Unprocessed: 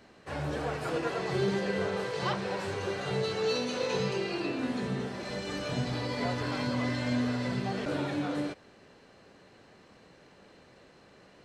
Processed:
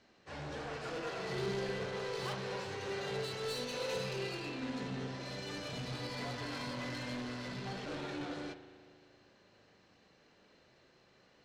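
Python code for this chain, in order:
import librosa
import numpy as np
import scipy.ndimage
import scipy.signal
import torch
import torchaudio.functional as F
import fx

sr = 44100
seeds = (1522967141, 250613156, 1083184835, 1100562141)

y = scipy.signal.sosfilt(scipy.signal.butter(4, 6600.0, 'lowpass', fs=sr, output='sos'), x)
y = fx.high_shelf(y, sr, hz=2900.0, db=8.5)
y = 10.0 ** (-31.5 / 20.0) * np.tanh(y / 10.0 ** (-31.5 / 20.0))
y = fx.rev_spring(y, sr, rt60_s=2.4, pass_ms=(38,), chirp_ms=45, drr_db=4.5)
y = fx.upward_expand(y, sr, threshold_db=-45.0, expansion=1.5)
y = F.gain(torch.from_numpy(y), -4.0).numpy()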